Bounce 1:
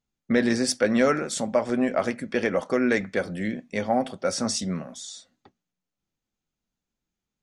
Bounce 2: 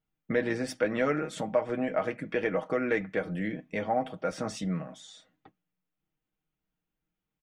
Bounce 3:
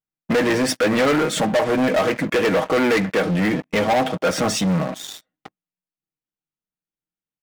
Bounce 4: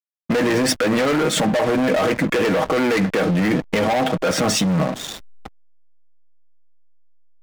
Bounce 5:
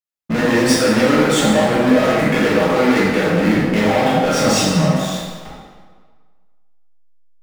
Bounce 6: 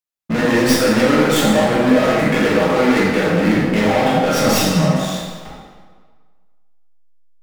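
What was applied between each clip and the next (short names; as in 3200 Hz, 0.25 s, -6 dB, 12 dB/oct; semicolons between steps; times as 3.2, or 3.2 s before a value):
band shelf 6600 Hz -13.5 dB; comb 6.4 ms, depth 63%; in parallel at +1 dB: compressor, threshold -29 dBFS, peak gain reduction 14 dB; on the sum: gain -8.5 dB
sample leveller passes 5; low shelf 78 Hz -8.5 dB
in parallel at 0 dB: negative-ratio compressor -21 dBFS, ratio -0.5; on the sum: backlash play -25 dBFS; gain -3.5 dB
reverb RT60 1.6 s, pre-delay 8 ms, DRR -7.5 dB; gain -4 dB
tracing distortion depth 0.066 ms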